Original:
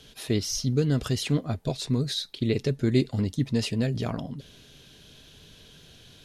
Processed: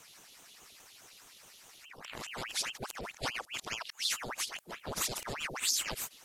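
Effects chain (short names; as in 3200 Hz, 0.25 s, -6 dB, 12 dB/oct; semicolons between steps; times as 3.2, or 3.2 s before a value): whole clip reversed; pre-emphasis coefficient 0.9; ring modulator with a swept carrier 1600 Hz, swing 85%, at 4.8 Hz; gain +6 dB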